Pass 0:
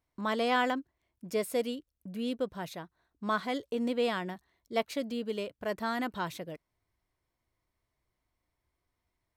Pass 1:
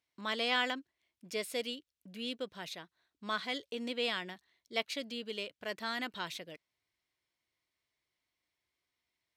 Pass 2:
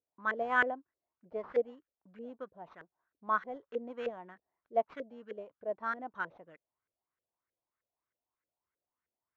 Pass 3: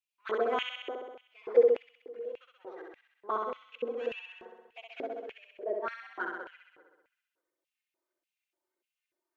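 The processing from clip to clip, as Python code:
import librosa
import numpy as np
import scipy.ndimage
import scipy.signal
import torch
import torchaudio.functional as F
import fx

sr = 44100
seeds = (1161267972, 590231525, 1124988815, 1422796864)

y1 = fx.weighting(x, sr, curve='D')
y1 = y1 * librosa.db_to_amplitude(-7.0)
y2 = fx.sample_hold(y1, sr, seeds[0], rate_hz=9800.0, jitter_pct=0)
y2 = fx.filter_lfo_lowpass(y2, sr, shape='saw_up', hz=3.2, low_hz=470.0, high_hz=1700.0, q=3.8)
y2 = fx.upward_expand(y2, sr, threshold_db=-40.0, expansion=1.5)
y3 = fx.env_flanger(y2, sr, rest_ms=3.3, full_db=-28.5)
y3 = fx.room_flutter(y3, sr, wall_m=11.1, rt60_s=1.2)
y3 = fx.filter_lfo_highpass(y3, sr, shape='square', hz=1.7, low_hz=370.0, high_hz=2600.0, q=5.5)
y3 = y3 * librosa.db_to_amplitude(1.5)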